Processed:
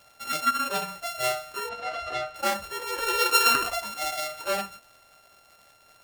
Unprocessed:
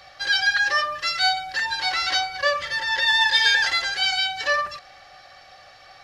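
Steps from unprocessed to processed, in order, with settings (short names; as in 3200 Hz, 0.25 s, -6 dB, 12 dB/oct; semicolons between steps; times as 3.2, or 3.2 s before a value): sample sorter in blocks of 32 samples; spectral noise reduction 10 dB; 1.69–2.36 LPF 3600 Hz 12 dB/oct; crackle 140/s -44 dBFS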